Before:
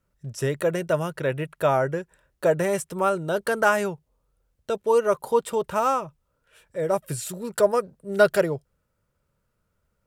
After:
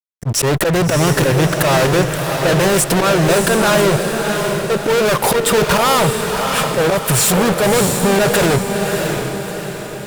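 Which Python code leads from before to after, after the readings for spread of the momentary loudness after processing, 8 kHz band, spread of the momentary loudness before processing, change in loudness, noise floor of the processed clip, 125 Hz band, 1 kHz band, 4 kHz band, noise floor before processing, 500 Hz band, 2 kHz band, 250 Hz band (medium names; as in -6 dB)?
5 LU, +19.5 dB, 11 LU, +9.5 dB, -27 dBFS, +16.0 dB, +9.5 dB, +21.0 dB, -75 dBFS, +8.0 dB, +11.5 dB, +15.0 dB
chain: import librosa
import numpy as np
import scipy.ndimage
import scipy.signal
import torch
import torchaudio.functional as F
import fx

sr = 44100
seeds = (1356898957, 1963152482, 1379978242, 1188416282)

y = fx.auto_swell(x, sr, attack_ms=427.0)
y = fx.fuzz(y, sr, gain_db=53.0, gate_db=-60.0)
y = fx.echo_diffused(y, sr, ms=654, feedback_pct=48, wet_db=-4.5)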